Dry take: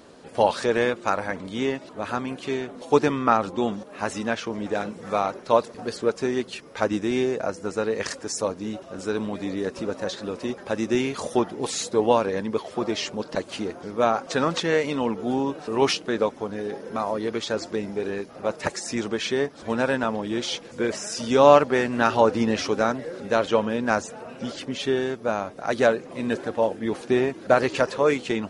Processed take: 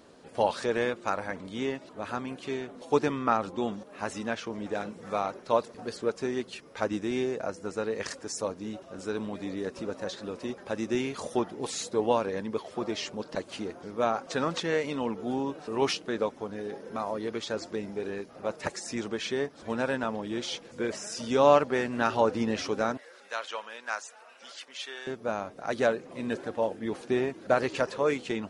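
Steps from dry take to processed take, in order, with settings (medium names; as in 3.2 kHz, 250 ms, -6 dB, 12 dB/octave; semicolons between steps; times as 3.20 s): 22.97–25.07 s: high-pass 1.1 kHz 12 dB/octave; trim -6 dB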